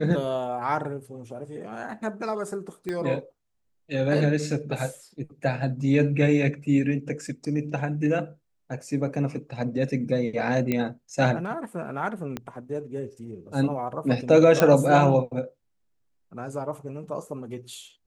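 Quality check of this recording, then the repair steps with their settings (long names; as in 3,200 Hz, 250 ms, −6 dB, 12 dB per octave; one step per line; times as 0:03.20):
0:02.89: click −19 dBFS
0:10.72: click −12 dBFS
0:12.37: click −17 dBFS
0:14.60: click −6 dBFS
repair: click removal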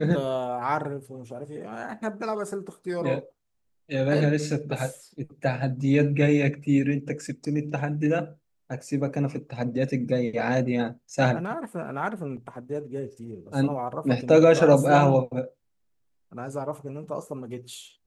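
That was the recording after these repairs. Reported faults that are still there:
0:02.89: click
0:12.37: click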